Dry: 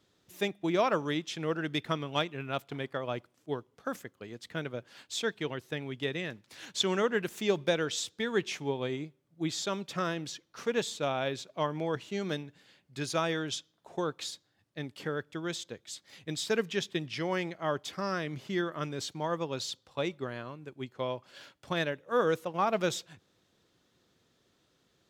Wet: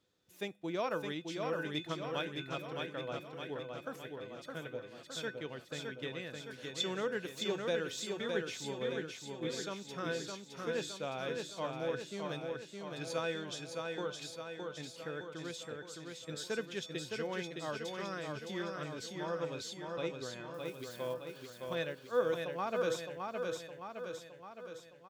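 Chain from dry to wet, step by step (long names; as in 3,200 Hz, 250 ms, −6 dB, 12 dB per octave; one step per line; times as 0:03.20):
0:20.54–0:21.14: spike at every zero crossing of −37.5 dBFS
tuned comb filter 500 Hz, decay 0.3 s, harmonics odd, mix 80%
repeating echo 614 ms, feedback 57%, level −4 dB
level +4.5 dB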